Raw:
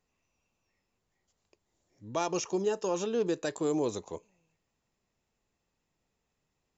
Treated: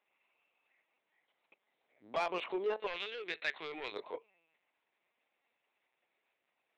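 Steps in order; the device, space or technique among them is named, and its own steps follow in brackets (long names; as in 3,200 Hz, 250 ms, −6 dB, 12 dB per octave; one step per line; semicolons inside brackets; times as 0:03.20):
talking toy (linear-prediction vocoder at 8 kHz pitch kept; high-pass filter 530 Hz 12 dB per octave; parametric band 2,200 Hz +7 dB 0.38 octaves; soft clipping −29 dBFS, distortion −15 dB)
0:02.87–0:03.92: octave-band graphic EQ 125/250/500/1,000/2,000/4,000 Hz −7/−8/−10/−6/+8/+6 dB
level +2.5 dB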